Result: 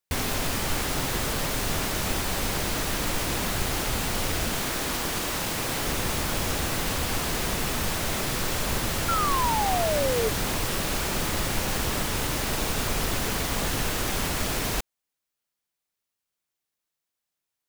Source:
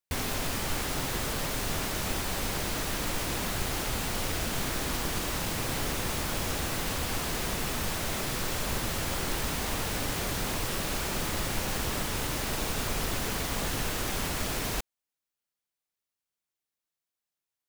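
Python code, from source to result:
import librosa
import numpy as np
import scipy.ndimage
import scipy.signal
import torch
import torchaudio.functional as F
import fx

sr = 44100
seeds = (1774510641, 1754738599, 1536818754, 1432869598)

y = fx.low_shelf(x, sr, hz=160.0, db=-7.0, at=(4.55, 5.87))
y = fx.spec_paint(y, sr, seeds[0], shape='fall', start_s=9.08, length_s=1.21, low_hz=430.0, high_hz=1400.0, level_db=-30.0)
y = y * librosa.db_to_amplitude(4.0)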